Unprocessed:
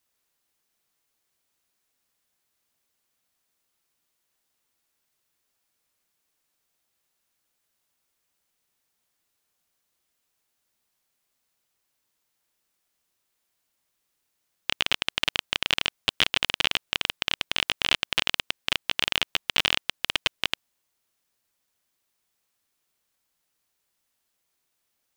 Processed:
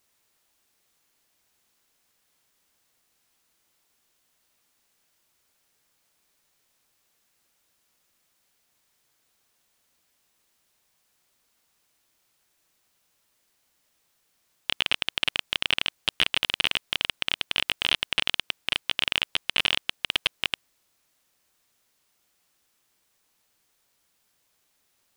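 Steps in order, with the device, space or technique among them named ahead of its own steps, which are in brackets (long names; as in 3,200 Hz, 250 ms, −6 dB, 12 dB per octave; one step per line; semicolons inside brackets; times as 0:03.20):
compact cassette (soft clipping −9.5 dBFS, distortion −13 dB; low-pass filter 9,400 Hz 12 dB per octave; tape wow and flutter; white noise bed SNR 37 dB)
level +3 dB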